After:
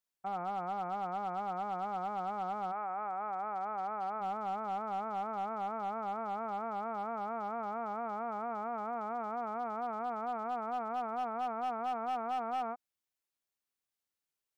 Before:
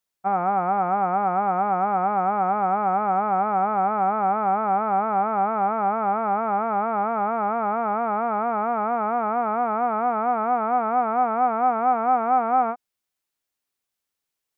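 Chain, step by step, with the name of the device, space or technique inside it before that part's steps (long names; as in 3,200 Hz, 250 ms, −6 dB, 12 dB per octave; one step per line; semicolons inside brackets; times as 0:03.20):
0:02.71–0:04.20: high-pass filter 890 Hz → 340 Hz 6 dB per octave
clipper into limiter (hard clipping −15.5 dBFS, distortion −20 dB; brickwall limiter −22 dBFS, peak gain reduction 6.5 dB)
level −8 dB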